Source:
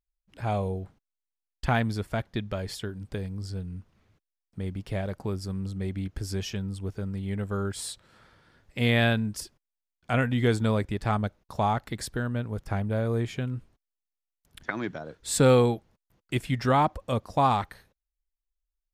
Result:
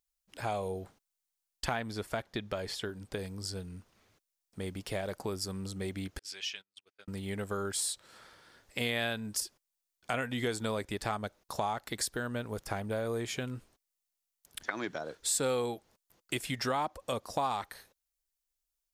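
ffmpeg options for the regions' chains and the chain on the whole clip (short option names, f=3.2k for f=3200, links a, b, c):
-filter_complex "[0:a]asettb=1/sr,asplit=3[a][b][c];[a]atrim=end=1.744[d];[b]atrim=start=1.74:end=3.19,asetpts=PTS-STARTPTS,afade=t=in:d=0.004:c=qsin,afade=t=out:st=1.446:d=0.004:c=qsin,acrossover=split=4300[e][f];[f]acompressor=threshold=-49dB:ratio=4:attack=1:release=60[g];[e][g]amix=inputs=2:normalize=0,highshelf=f=4.1k:g=-4.5[h];[c]atrim=start=3.186[i];[d][h]acrossfade=d=0.004:c1=hsin:c2=qsin[j];[j][i]acrossfade=d=0.004:c1=qsin:c2=hsin,asettb=1/sr,asplit=3[k][l][m];[k]atrim=end=6.194[n];[l]atrim=start=6.19:end=7.08,asetpts=PTS-STARTPTS,afade=t=in:d=0.004:c=qsin,afade=t=out:st=0.886:d=0.004:c=qsin,bandpass=f=2.7k:t=q:w=1.7,agate=range=-35dB:threshold=-55dB:ratio=16:release=100:detection=peak[o];[m]atrim=start=7.076[p];[n][o]acrossfade=d=0.004:c1=hsin:c2=qsin[q];[q][p]acrossfade=d=0.004:c1=qsin:c2=hsin,bass=f=250:g=-11,treble=f=4k:g=8,acompressor=threshold=-34dB:ratio=3,volume=2dB"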